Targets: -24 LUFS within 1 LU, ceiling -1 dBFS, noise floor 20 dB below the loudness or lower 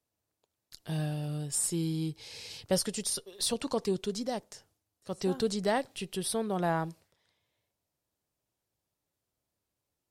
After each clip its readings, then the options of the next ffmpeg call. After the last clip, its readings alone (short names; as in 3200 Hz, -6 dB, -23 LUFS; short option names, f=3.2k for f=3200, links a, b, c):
loudness -32.5 LUFS; peak -17.0 dBFS; loudness target -24.0 LUFS
-> -af "volume=8.5dB"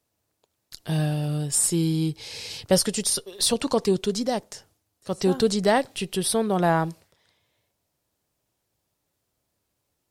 loudness -24.0 LUFS; peak -8.5 dBFS; noise floor -78 dBFS